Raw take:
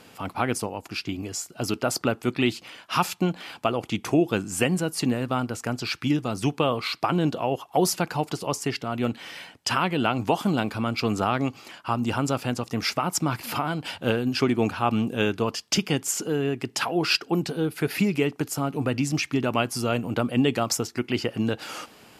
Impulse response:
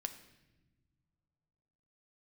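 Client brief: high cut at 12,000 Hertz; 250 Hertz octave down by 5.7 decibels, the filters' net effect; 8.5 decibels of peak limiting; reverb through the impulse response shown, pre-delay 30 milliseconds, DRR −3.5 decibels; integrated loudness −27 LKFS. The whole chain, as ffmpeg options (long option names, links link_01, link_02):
-filter_complex "[0:a]lowpass=12000,equalizer=frequency=250:width_type=o:gain=-7.5,alimiter=limit=-17dB:level=0:latency=1,asplit=2[link_01][link_02];[1:a]atrim=start_sample=2205,adelay=30[link_03];[link_02][link_03]afir=irnorm=-1:irlink=0,volume=5dB[link_04];[link_01][link_04]amix=inputs=2:normalize=0,volume=-1.5dB"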